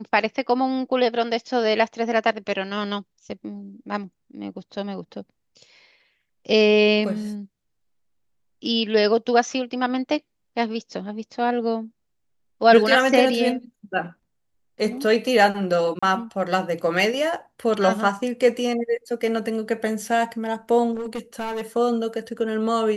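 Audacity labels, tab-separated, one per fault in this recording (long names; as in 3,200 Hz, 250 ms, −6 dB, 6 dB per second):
15.990000	16.020000	drop-out 35 ms
20.940000	21.620000	clipping −25 dBFS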